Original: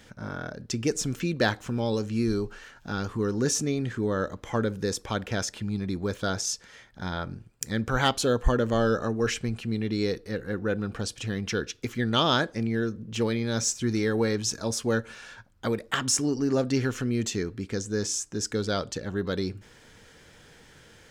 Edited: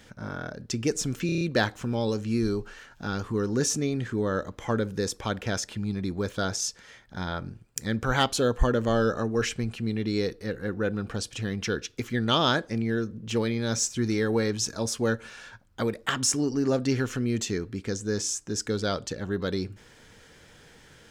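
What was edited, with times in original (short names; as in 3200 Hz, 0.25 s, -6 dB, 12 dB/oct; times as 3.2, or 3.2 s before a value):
1.26 stutter 0.03 s, 6 plays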